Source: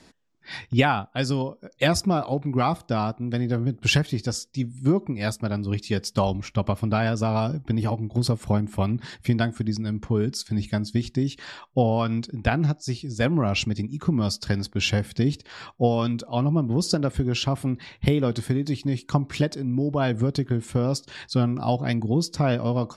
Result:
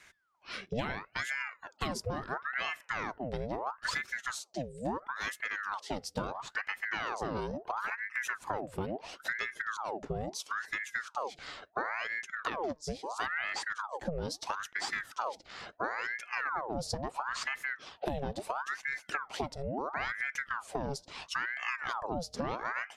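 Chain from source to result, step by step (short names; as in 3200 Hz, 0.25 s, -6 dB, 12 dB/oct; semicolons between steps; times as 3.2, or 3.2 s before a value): compressor 3:1, threshold -30 dBFS, peak gain reduction 12.5 dB; ring modulator with a swept carrier 1100 Hz, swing 75%, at 0.74 Hz; gain -2 dB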